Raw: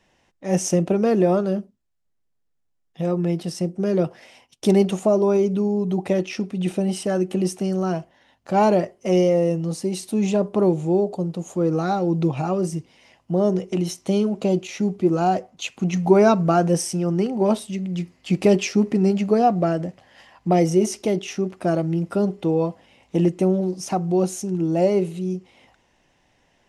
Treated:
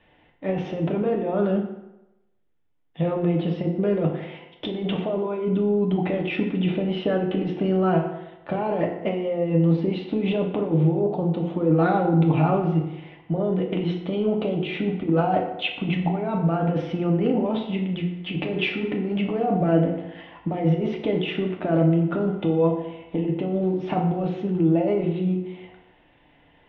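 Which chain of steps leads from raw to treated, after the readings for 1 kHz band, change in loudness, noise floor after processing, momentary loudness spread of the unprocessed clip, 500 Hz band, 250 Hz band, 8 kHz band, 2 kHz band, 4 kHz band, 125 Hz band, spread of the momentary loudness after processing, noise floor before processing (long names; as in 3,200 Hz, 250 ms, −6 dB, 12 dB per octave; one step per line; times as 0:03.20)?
−3.5 dB, −2.5 dB, −58 dBFS, 9 LU, −3.5 dB, −1.5 dB, below −35 dB, +1.5 dB, 0.0 dB, +1.0 dB, 8 LU, −70 dBFS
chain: Chebyshev low-pass filter 3,500 Hz, order 5
compressor whose output falls as the input rises −23 dBFS, ratio −1
feedback delay network reverb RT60 0.97 s, low-frequency decay 0.85×, high-frequency decay 0.7×, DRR 1 dB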